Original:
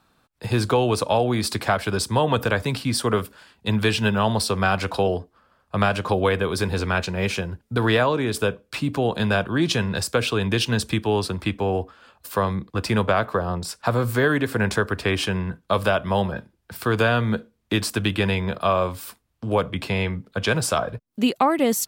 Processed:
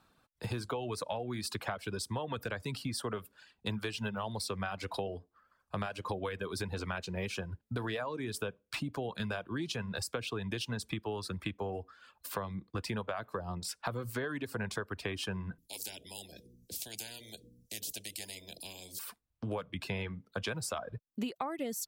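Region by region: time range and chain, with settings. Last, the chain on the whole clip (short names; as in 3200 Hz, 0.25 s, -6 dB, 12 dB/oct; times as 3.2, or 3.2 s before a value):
15.58–18.99 Chebyshev band-stop 230–6200 Hz + de-hum 60.42 Hz, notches 8 + spectral compressor 10:1
whole clip: reverb removal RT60 0.78 s; compressor 6:1, threshold -29 dBFS; gain -5 dB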